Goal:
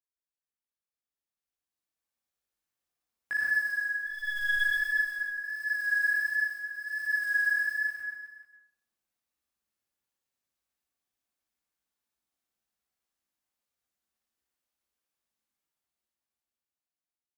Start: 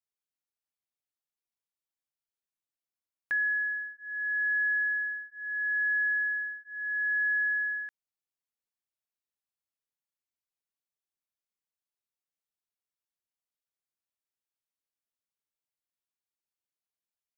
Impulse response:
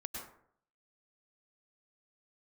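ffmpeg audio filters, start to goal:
-filter_complex "[0:a]dynaudnorm=f=380:g=9:m=12dB,asplit=2[a][b];[b]asoftclip=type=tanh:threshold=-25.5dB,volume=-6dB[c];[a][c]amix=inputs=2:normalize=0,flanger=delay=16:depth=3.6:speed=1.4,acrusher=bits=7:mode=log:mix=0:aa=0.000001,asplit=3[d][e][f];[d]afade=t=out:st=3.94:d=0.02[g];[e]aeval=exprs='0.282*(cos(1*acos(clip(val(0)/0.282,-1,1)))-cos(1*PI/2))+0.0447*(cos(2*acos(clip(val(0)/0.282,-1,1)))-cos(2*PI/2))':c=same,afade=t=in:st=3.94:d=0.02,afade=t=out:st=4.63:d=0.02[h];[f]afade=t=in:st=4.63:d=0.02[i];[g][h][i]amix=inputs=3:normalize=0,aecho=1:1:60|138|239.4|371.2|542.6:0.631|0.398|0.251|0.158|0.1[j];[1:a]atrim=start_sample=2205[k];[j][k]afir=irnorm=-1:irlink=0,volume=-7dB"

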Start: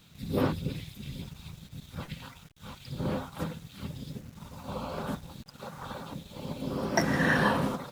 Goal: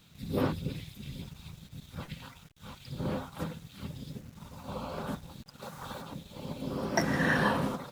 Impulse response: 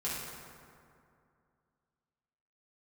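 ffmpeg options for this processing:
-filter_complex "[0:a]asettb=1/sr,asplit=3[a][b][c];[a]atrim=end=5.624[d];[b]atrim=start=5.62:end=6.02,asetpts=PTS-STARTPTS,afade=t=in:d=0.004:c=qsin,afade=t=out:st=0.396:d=0.004:c=qsin,highshelf=f=4.3k:g=6.5[e];[c]atrim=start=6.016[f];[d][e]acrossfade=d=0.004:c1=hsin:c2=qsin[g];[g][f]acrossfade=d=0.004:c1=qsin:c2=hsin,volume=-2dB"

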